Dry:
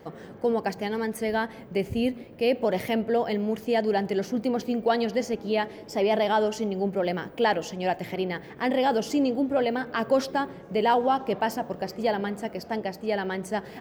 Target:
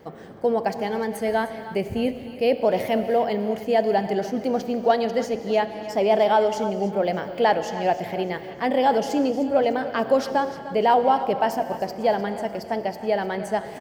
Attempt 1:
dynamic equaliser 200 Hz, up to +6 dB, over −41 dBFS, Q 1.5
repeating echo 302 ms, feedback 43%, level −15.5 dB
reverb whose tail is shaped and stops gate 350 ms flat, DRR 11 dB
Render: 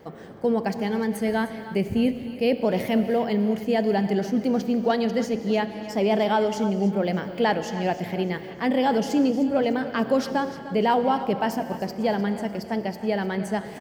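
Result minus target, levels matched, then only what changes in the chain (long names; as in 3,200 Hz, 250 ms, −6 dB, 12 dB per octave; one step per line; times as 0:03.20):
250 Hz band +5.5 dB
change: dynamic equaliser 680 Hz, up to +6 dB, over −41 dBFS, Q 1.5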